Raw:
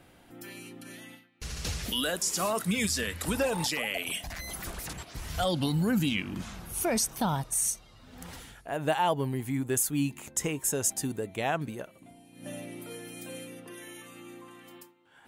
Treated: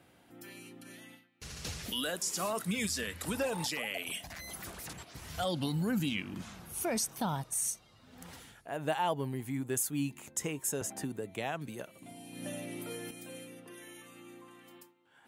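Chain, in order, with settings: HPF 82 Hz; 10.81–13.11 three-band squash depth 70%; gain -5 dB

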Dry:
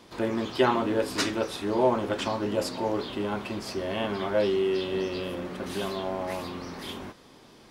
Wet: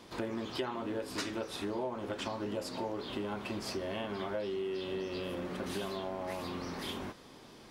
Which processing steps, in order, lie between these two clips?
compressor 6:1, threshold -33 dBFS, peak gain reduction 15 dB; gain -1 dB

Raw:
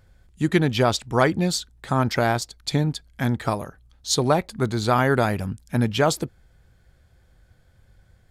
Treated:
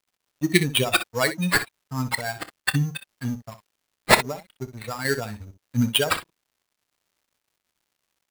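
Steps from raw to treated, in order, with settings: per-bin expansion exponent 3; HPF 96 Hz 12 dB/oct; bell 920 Hz -6 dB 1.7 oct; 4.14–5.05 compressor 6:1, threshold -30 dBFS, peak gain reduction 7.5 dB; resonant high shelf 1600 Hz +7.5 dB, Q 1.5; sample-rate reducer 6200 Hz, jitter 0%; crossover distortion -45 dBFS; crackle 220/s -62 dBFS; early reflections 28 ms -17 dB, 62 ms -12.5 dB; gain +4.5 dB

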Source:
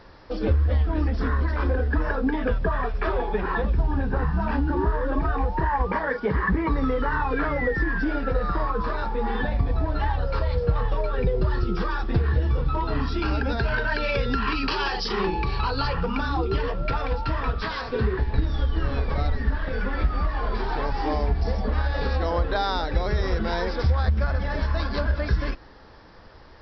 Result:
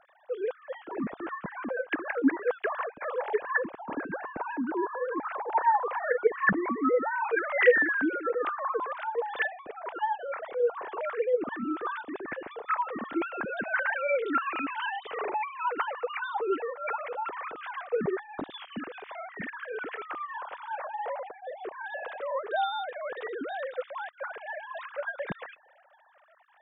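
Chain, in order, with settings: sine-wave speech; gain -8 dB

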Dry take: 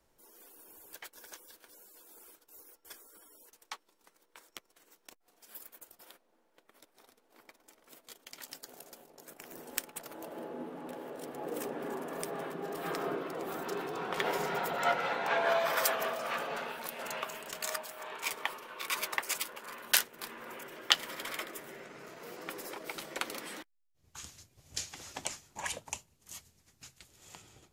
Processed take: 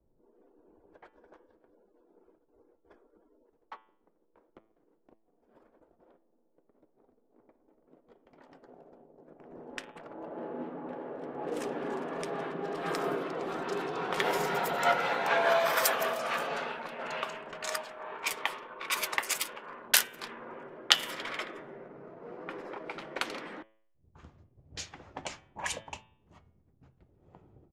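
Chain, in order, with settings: downsampling 32000 Hz; low-pass opened by the level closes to 400 Hz, open at -31.5 dBFS; de-hum 109.9 Hz, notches 33; gain +3.5 dB

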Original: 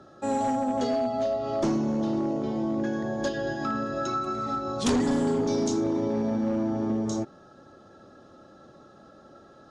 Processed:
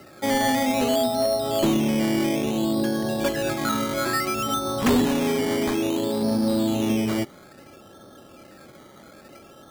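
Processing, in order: 5.06–6.22 low shelf 250 Hz -7 dB; decimation with a swept rate 13×, swing 60% 0.59 Hz; gain +4.5 dB

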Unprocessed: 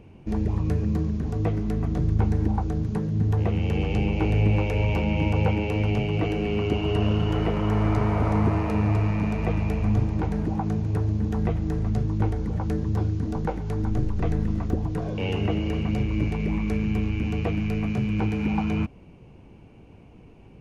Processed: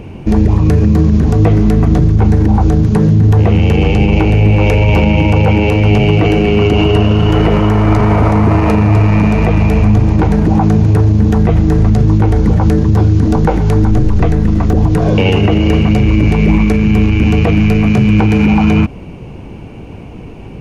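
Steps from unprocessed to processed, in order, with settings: maximiser +20.5 dB; gain -1 dB

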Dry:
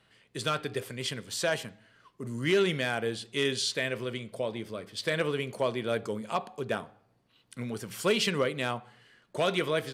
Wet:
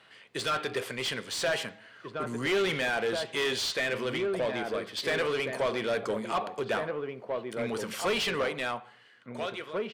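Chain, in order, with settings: ending faded out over 2.14 s; outdoor echo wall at 290 m, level -7 dB; overdrive pedal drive 21 dB, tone 3300 Hz, clips at -15.5 dBFS; gain -4.5 dB

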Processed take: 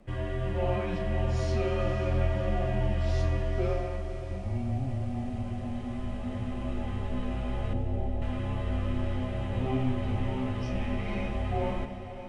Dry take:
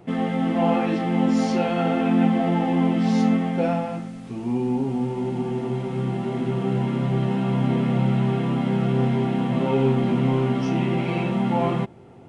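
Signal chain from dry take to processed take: 7.73–8.22 Chebyshev low-pass 1000 Hz, order 10; frequency shift -140 Hz; diffused feedback echo 0.55 s, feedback 60%, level -12 dB; on a send at -9 dB: reverb RT60 2.6 s, pre-delay 48 ms; on the sum: gain -8 dB

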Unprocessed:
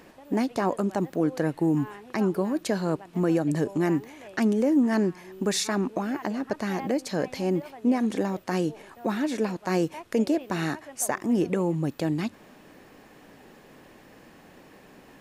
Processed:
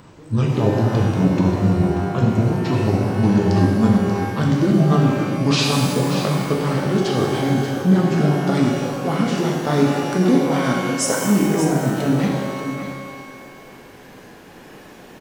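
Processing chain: gliding pitch shift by -10.5 st ending unshifted; echo 0.585 s -10 dB; shimmer reverb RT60 1.6 s, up +12 st, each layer -8 dB, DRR -0.5 dB; gain +6 dB

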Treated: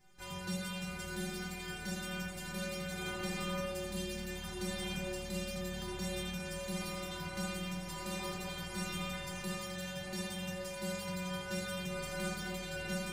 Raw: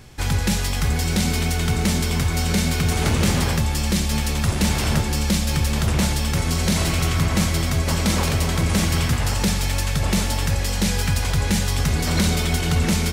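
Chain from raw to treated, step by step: notches 60/120/180 Hz; metallic resonator 180 Hz, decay 0.65 s, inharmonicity 0.008; spring tank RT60 1.9 s, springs 50/55 ms, chirp 40 ms, DRR -1 dB; gain -3 dB

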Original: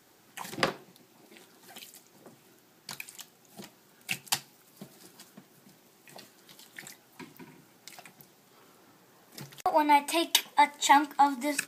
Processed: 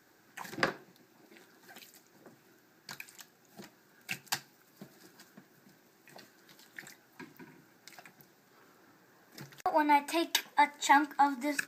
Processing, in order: thirty-one-band EQ 315 Hz +3 dB, 1600 Hz +8 dB, 3150 Hz -6 dB, 10000 Hz -12 dB; gain -4 dB

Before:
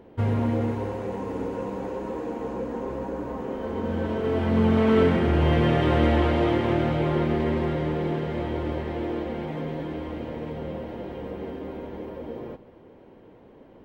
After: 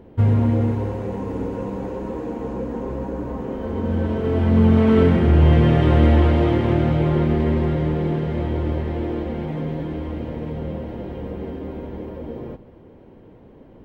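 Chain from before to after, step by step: low shelf 230 Hz +10.5 dB

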